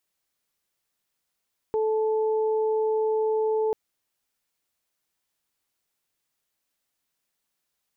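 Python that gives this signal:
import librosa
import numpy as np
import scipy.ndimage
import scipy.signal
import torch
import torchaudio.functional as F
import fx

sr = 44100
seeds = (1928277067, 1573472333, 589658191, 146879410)

y = fx.additive_steady(sr, length_s=1.99, hz=436.0, level_db=-21.5, upper_db=(-10.5,))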